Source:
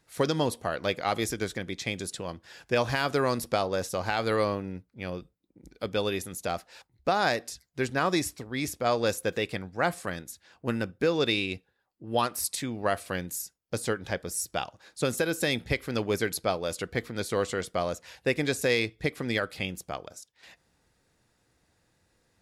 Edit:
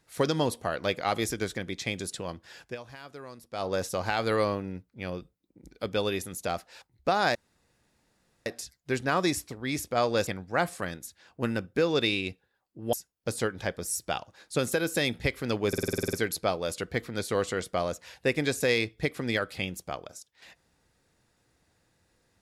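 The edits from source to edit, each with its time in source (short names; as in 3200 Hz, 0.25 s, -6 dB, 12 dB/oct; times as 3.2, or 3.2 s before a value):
2.6–3.69 dip -18 dB, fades 0.17 s
7.35 insert room tone 1.11 s
9.16–9.52 cut
12.18–13.39 cut
16.14 stutter 0.05 s, 10 plays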